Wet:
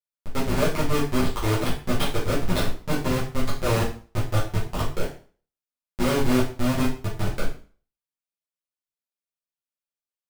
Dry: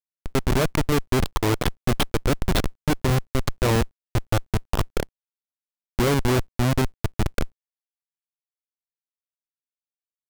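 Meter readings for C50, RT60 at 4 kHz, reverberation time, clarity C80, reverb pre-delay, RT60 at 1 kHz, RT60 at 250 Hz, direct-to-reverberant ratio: 6.0 dB, 0.35 s, 0.40 s, 12.0 dB, 4 ms, 0.40 s, 0.45 s, -9.5 dB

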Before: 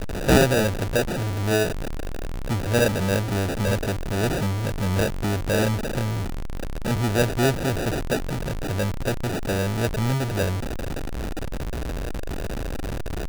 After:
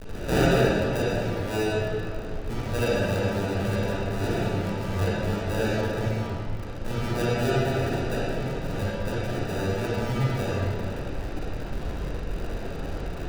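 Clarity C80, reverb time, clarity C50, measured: -3.0 dB, 2.2 s, -6.0 dB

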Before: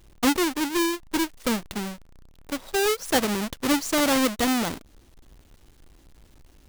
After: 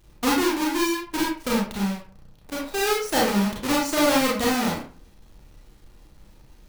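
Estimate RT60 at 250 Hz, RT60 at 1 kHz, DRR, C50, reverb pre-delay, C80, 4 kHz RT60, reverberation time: 0.50 s, 0.40 s, -4.5 dB, 3.5 dB, 29 ms, 10.0 dB, 0.25 s, 0.40 s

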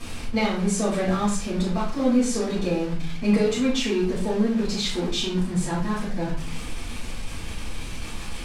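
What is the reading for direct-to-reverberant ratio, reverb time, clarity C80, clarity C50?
-11.0 dB, 0.45 s, 9.0 dB, 4.0 dB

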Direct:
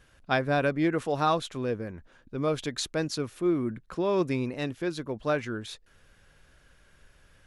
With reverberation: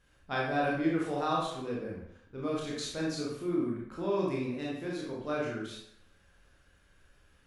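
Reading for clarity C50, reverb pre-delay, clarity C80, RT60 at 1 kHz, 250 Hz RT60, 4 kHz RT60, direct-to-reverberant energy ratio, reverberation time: 1.0 dB, 21 ms, 5.5 dB, 0.70 s, 0.70 s, 0.60 s, -4.5 dB, 0.70 s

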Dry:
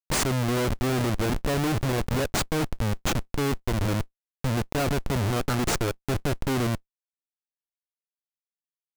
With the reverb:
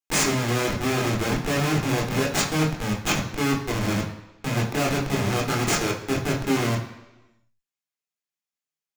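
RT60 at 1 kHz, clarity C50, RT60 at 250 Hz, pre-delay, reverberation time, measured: 1.0 s, 8.0 dB, 0.95 s, 16 ms, 1.0 s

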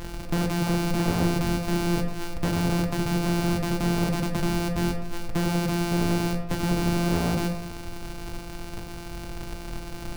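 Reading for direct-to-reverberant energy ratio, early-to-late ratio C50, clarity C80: 4.0 dB, 8.0 dB, 11.0 dB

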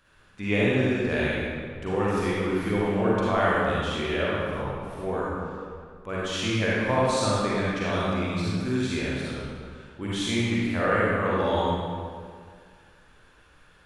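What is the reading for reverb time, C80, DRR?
2.0 s, -2.0 dB, -8.0 dB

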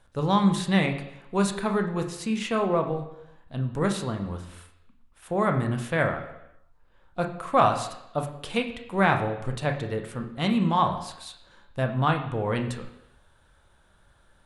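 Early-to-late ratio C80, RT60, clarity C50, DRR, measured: 11.5 dB, 0.85 s, 9.0 dB, 4.0 dB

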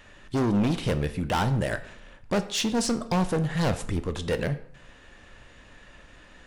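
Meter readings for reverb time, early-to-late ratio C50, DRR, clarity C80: 0.65 s, 14.5 dB, 10.0 dB, 17.0 dB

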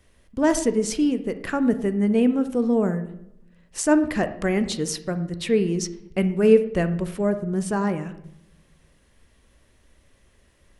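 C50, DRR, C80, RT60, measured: 12.0 dB, 9.5 dB, 15.5 dB, 0.80 s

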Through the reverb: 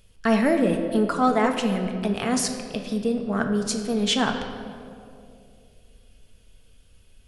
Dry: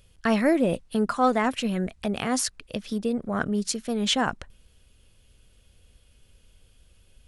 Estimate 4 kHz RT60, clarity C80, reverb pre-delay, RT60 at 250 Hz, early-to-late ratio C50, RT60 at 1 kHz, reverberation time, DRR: 1.3 s, 8.0 dB, 4 ms, 2.7 s, 6.5 dB, 2.2 s, 2.7 s, 3.5 dB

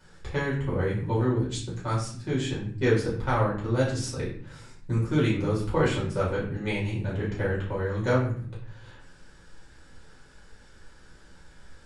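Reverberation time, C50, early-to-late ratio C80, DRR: 0.50 s, 5.0 dB, 9.0 dB, -7.5 dB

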